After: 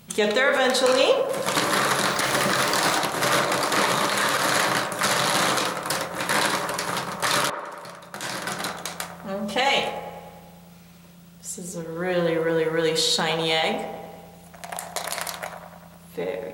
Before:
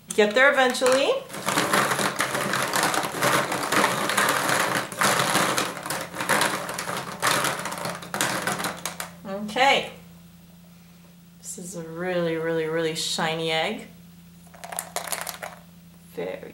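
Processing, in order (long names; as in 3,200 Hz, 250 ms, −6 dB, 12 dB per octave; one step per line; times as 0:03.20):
0:02.07–0:02.99: converter with a step at zero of −32 dBFS
dynamic equaliser 4,600 Hz, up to +5 dB, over −38 dBFS, Q 1.1
brickwall limiter −12 dBFS, peak gain reduction 9 dB
0:07.50–0:09.24: fade in
delay with a band-pass on its return 99 ms, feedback 66%, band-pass 670 Hz, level −6 dB
level +1.5 dB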